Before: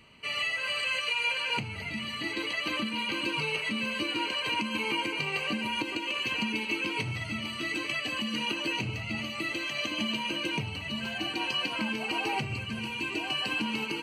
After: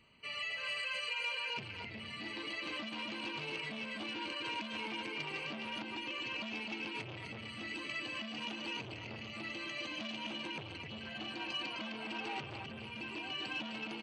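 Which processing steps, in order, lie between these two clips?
gate on every frequency bin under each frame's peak −30 dB strong
single-tap delay 257 ms −4.5 dB
saturating transformer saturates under 1,800 Hz
level −9 dB

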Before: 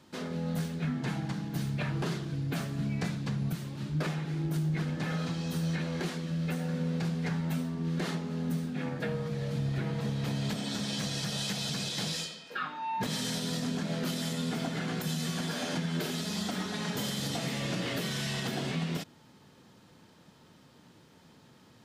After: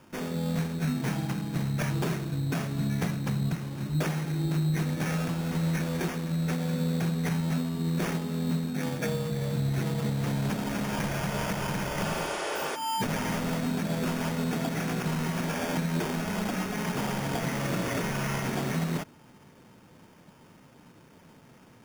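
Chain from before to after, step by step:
decimation without filtering 11×
healed spectral selection 0:12.07–0:12.73, 300–11,000 Hz before
level +3.5 dB

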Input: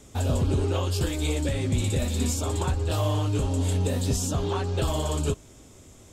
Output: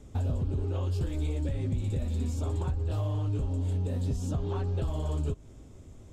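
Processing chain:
spectral tilt −2.5 dB per octave
downward compressor, threshold −21 dBFS, peak gain reduction 9.5 dB
level −6 dB

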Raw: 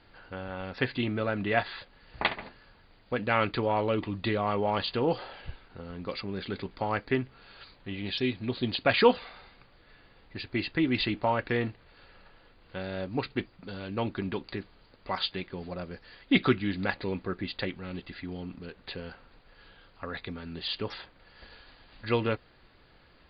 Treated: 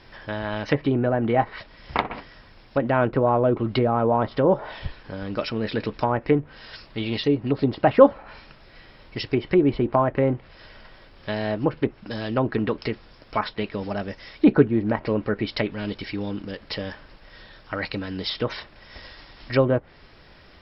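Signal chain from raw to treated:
treble cut that deepens with the level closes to 820 Hz, closed at −26 dBFS
speed change +13%
level +9 dB

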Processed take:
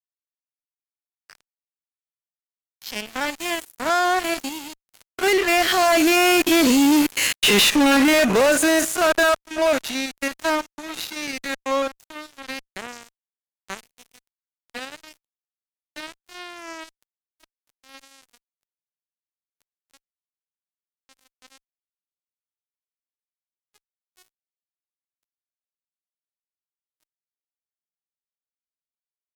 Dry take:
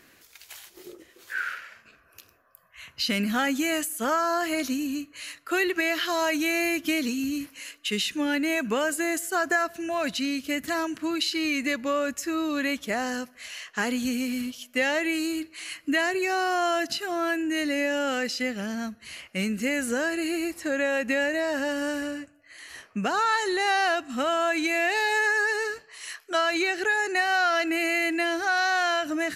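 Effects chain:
spectrum averaged block by block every 50 ms
source passing by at 0:07.33, 19 m/s, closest 8.4 metres
high-pass filter 260 Hz 6 dB per octave
dynamic equaliser 610 Hz, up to +5 dB, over −50 dBFS, Q 1.1
fuzz pedal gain 40 dB, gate −47 dBFS
MP3 128 kbit/s 48,000 Hz

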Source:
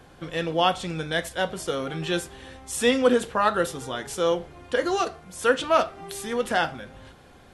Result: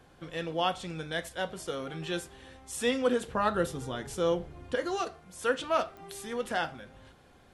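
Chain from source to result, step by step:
0:03.28–0:04.75: low-shelf EQ 310 Hz +10 dB
digital clicks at 0:05.97, −27 dBFS
level −7.5 dB

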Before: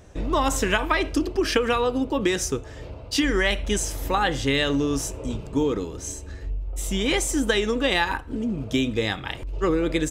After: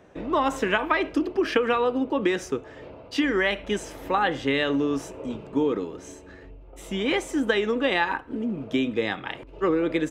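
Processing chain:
three-way crossover with the lows and the highs turned down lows −18 dB, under 160 Hz, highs −15 dB, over 3,200 Hz

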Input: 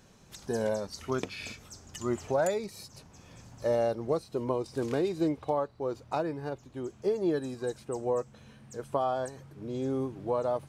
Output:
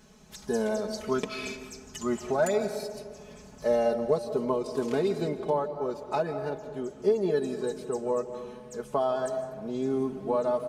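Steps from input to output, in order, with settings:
comb filter 4.7 ms, depth 83%
comb and all-pass reverb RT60 1.8 s, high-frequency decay 0.3×, pre-delay 115 ms, DRR 10 dB

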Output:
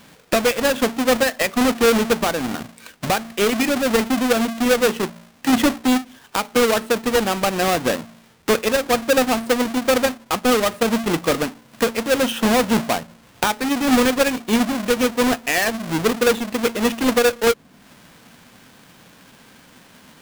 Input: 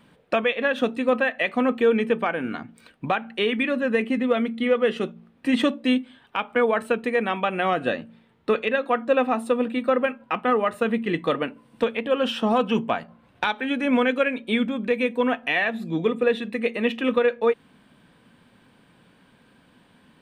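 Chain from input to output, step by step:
each half-wave held at its own peak
one half of a high-frequency compander encoder only

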